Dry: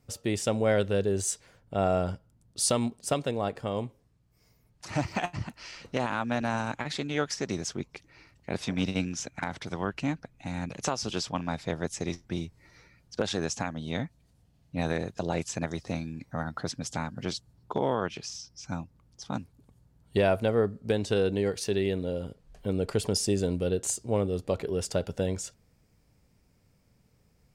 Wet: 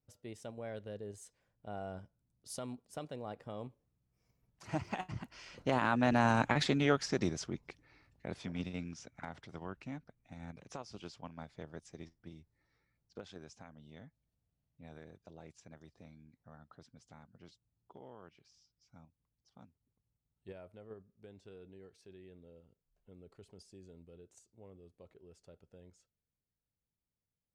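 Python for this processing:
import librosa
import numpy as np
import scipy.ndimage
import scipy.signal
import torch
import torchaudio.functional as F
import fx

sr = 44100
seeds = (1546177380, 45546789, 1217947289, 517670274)

p1 = fx.doppler_pass(x, sr, speed_mps=16, closest_m=7.0, pass_at_s=6.49)
p2 = fx.high_shelf(p1, sr, hz=3100.0, db=-6.0)
p3 = fx.level_steps(p2, sr, step_db=13)
y = p2 + (p3 * 10.0 ** (1.0 / 20.0))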